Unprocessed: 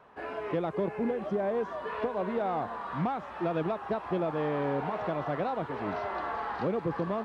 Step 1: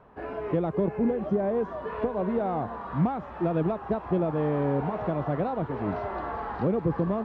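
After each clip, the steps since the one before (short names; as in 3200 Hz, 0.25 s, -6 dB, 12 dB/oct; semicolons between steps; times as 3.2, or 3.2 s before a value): tilt -3 dB/oct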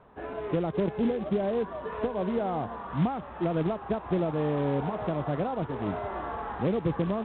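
short-mantissa float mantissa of 2-bit; gain -1.5 dB; µ-law 64 kbps 8000 Hz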